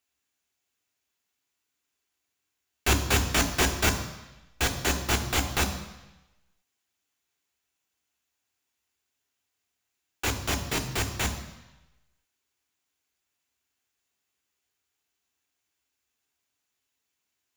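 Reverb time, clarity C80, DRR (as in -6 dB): 1.0 s, 12.0 dB, 5.0 dB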